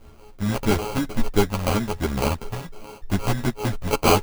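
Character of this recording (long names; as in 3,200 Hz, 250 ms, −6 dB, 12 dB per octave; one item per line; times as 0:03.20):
a buzz of ramps at a fixed pitch in blocks of 32 samples
phaser sweep stages 2, 3 Hz, lowest notch 350–4,400 Hz
aliases and images of a low sample rate 1,800 Hz, jitter 0%
a shimmering, thickened sound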